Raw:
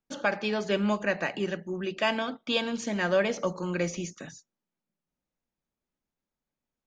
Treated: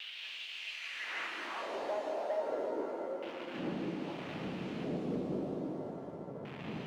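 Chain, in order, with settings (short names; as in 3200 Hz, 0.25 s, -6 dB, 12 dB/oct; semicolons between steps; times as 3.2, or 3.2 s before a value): Doppler pass-by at 1.84, 23 m/s, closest 1.6 m; wind noise 530 Hz -40 dBFS; delay with a stepping band-pass 0.203 s, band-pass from 300 Hz, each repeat 1.4 oct, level 0 dB; bit-crush 8-bit; dynamic EQ 290 Hz, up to +7 dB, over -47 dBFS, Q 1.4; LFO low-pass square 0.31 Hz 560–2800 Hz; low shelf 120 Hz +7 dB; high-pass sweep 3100 Hz -> 160 Hz, 0.43–4.07; compressor 2:1, threshold -48 dBFS, peak gain reduction 15.5 dB; sample leveller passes 1; shimmer reverb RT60 2.7 s, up +7 st, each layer -8 dB, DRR 3 dB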